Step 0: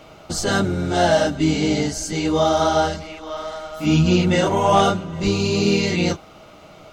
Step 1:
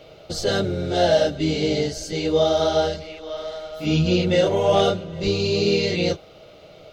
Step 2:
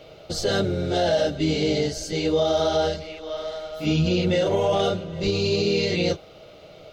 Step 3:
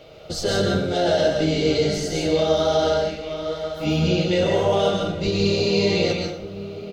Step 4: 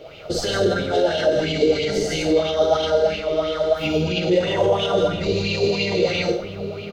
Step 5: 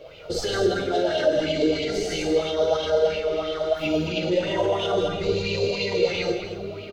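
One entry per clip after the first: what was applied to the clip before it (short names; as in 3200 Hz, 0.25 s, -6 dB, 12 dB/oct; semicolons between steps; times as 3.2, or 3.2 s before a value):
ten-band EQ 125 Hz +3 dB, 250 Hz -6 dB, 500 Hz +11 dB, 1000 Hz -9 dB, 4000 Hz +7 dB, 8000 Hz -7 dB; gain -4 dB
limiter -13 dBFS, peak gain reduction 7 dB
outdoor echo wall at 200 m, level -12 dB; plate-style reverb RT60 0.59 s, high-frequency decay 0.8×, pre-delay 0.115 s, DRR 1 dB
doubler 49 ms -3 dB; limiter -16 dBFS, peak gain reduction 9 dB; LFO bell 3 Hz 370–3000 Hz +12 dB
flange 0.35 Hz, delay 1.8 ms, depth 1.7 ms, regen +48%; echo 0.223 s -10 dB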